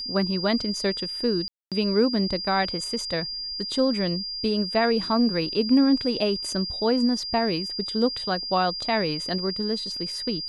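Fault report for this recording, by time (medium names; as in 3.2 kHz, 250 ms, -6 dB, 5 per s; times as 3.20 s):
whine 4.8 kHz -30 dBFS
1.48–1.72 s: dropout 237 ms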